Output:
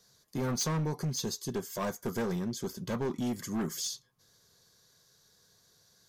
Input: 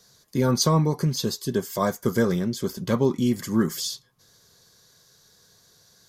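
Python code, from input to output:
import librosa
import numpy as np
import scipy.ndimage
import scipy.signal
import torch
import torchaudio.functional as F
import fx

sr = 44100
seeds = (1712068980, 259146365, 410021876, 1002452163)

y = fx.dynamic_eq(x, sr, hz=6400.0, q=6.4, threshold_db=-49.0, ratio=4.0, max_db=7)
y = np.clip(10.0 ** (20.5 / 20.0) * y, -1.0, 1.0) / 10.0 ** (20.5 / 20.0)
y = F.gain(torch.from_numpy(y), -7.5).numpy()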